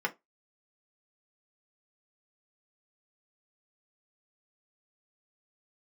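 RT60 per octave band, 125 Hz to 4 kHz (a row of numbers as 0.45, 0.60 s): 0.15, 0.20, 0.20, 0.20, 0.15, 0.15 s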